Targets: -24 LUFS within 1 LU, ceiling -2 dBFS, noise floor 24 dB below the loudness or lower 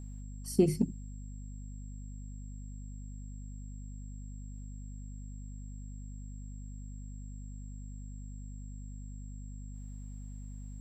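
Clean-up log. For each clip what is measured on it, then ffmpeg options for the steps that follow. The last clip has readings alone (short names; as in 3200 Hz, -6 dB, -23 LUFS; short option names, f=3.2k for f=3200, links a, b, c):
hum 50 Hz; harmonics up to 250 Hz; hum level -41 dBFS; steady tone 7600 Hz; tone level -61 dBFS; loudness -41.0 LUFS; peak -13.0 dBFS; loudness target -24.0 LUFS
-> -af "bandreject=f=50:t=h:w=4,bandreject=f=100:t=h:w=4,bandreject=f=150:t=h:w=4,bandreject=f=200:t=h:w=4,bandreject=f=250:t=h:w=4"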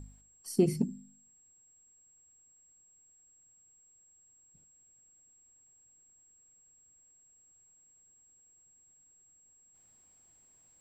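hum none; steady tone 7600 Hz; tone level -61 dBFS
-> -af "bandreject=f=7.6k:w=30"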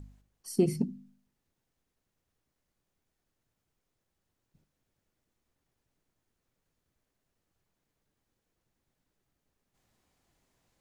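steady tone none; loudness -31.0 LUFS; peak -13.0 dBFS; loudness target -24.0 LUFS
-> -af "volume=7dB"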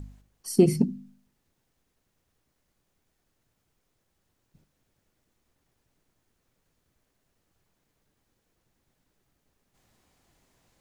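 loudness -24.0 LUFS; peak -6.0 dBFS; noise floor -77 dBFS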